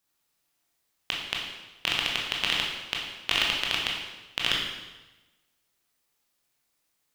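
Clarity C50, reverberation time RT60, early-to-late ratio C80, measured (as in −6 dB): 2.5 dB, 1.1 s, 4.5 dB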